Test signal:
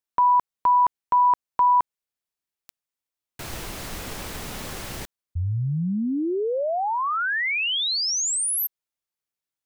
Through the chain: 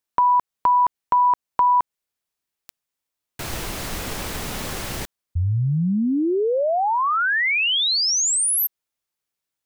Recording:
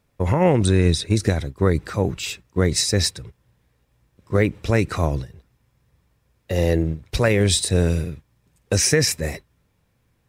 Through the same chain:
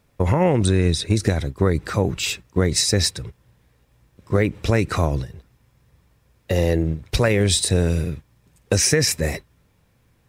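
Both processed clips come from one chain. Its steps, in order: compressor 2:1, threshold -23 dBFS; gain +5 dB

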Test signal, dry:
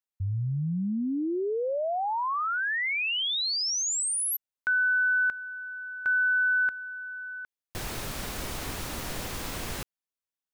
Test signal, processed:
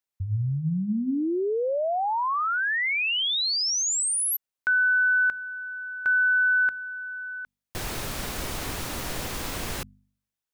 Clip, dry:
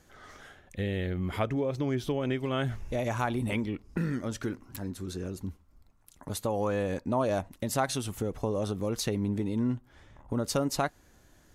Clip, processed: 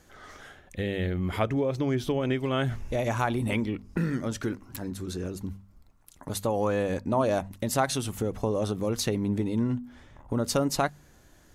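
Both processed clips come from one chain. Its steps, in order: de-hum 49.06 Hz, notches 5; gain +3 dB

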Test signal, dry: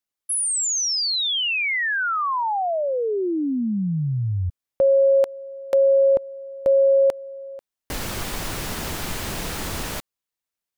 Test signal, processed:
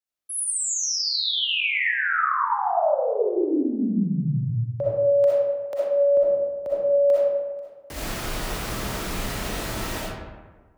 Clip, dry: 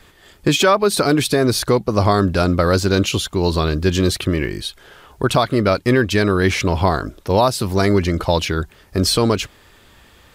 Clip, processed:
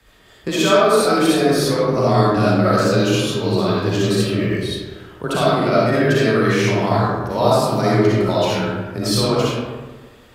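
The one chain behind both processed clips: frequency shift +21 Hz; digital reverb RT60 1.4 s, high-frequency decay 0.5×, pre-delay 20 ms, DRR -8 dB; gain -8.5 dB

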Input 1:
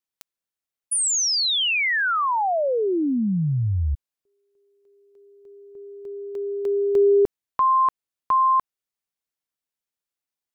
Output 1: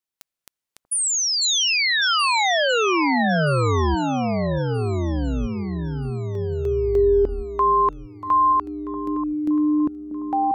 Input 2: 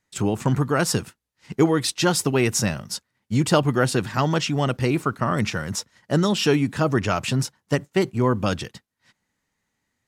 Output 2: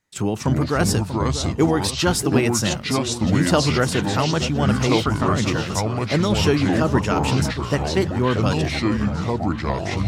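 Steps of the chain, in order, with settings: echoes that change speed 0.194 s, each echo -5 st, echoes 2; echo with dull and thin repeats by turns 0.638 s, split 1100 Hz, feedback 59%, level -10 dB

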